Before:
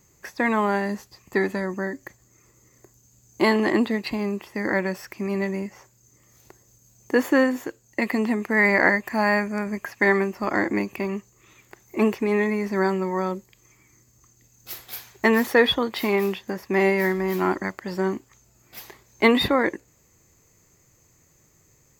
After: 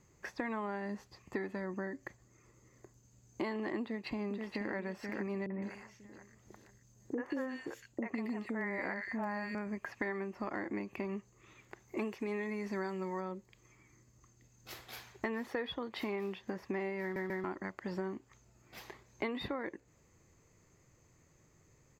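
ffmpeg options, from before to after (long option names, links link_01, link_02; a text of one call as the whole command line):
ffmpeg -i in.wav -filter_complex "[0:a]asplit=2[link_01][link_02];[link_02]afade=type=in:start_time=3.82:duration=0.01,afade=type=out:start_time=4.74:duration=0.01,aecho=0:1:480|960|1440|1920|2400:0.398107|0.159243|0.0636971|0.0254789|0.0101915[link_03];[link_01][link_03]amix=inputs=2:normalize=0,asettb=1/sr,asplit=3[link_04][link_05][link_06];[link_04]atrim=end=5.464[link_07];[link_05]atrim=start=5.46:end=9.55,asetpts=PTS-STARTPTS,afade=type=in:duration=0.004:curve=qsin,afade=type=out:start_time=4.086:duration=0.004:curve=qsin,acrossover=split=530|2100[link_08][link_09][link_10];[link_09]adelay=40[link_11];[link_10]adelay=160[link_12];[link_08][link_11][link_12]amix=inputs=3:normalize=0,atrim=end_sample=180369[link_13];[link_06]atrim=start=9.546[link_14];[link_07][link_13]acrossfade=duration=0.004:curve1=hsin:curve2=qsin[link_15];[link_15][link_14]acrossfade=duration=0.004:curve1=qsin:curve2=hsin,asettb=1/sr,asplit=3[link_16][link_17][link_18];[link_16]atrim=end=11.974[link_19];[link_17]atrim=start=11.97:end=13.21,asetpts=PTS-STARTPTS,afade=type=in:duration=0.004:curve=qsin,afade=type=out:start_time=1.236:duration=0.004:curve=qsin,highshelf=frequency=3300:gain=10.5[link_20];[link_18]atrim=start=13.206[link_21];[link_19][link_20]acrossfade=duration=0.004:curve1=hsin:curve2=qsin[link_22];[link_22][link_21]acrossfade=duration=0.004:curve1=qsin:curve2=hsin,asplit=4[link_23][link_24][link_25][link_26];[link_23]atrim=end=17.162[link_27];[link_24]atrim=start=17.018:end=17.162[link_28];[link_25]atrim=start=17.018:end=17.162[link_29];[link_26]atrim=start=17.438[link_30];[link_27][link_28]acrossfade=duration=0.004:curve1=hsin:curve2=hsin[link_31];[link_31][link_29]acrossfade=duration=0.004:curve1=hsin:curve2=hsin[link_32];[link_32][link_30]acrossfade=duration=0.004:curve1=hsin:curve2=hsin,aemphasis=mode=reproduction:type=50fm,acompressor=threshold=-31dB:ratio=6,volume=-4.5dB" out.wav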